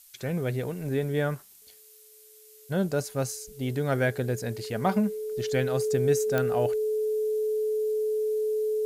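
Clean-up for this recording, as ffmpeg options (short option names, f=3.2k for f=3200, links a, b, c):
-af "adeclick=t=4,bandreject=f=430:w=30,afftdn=nr=20:nf=-53"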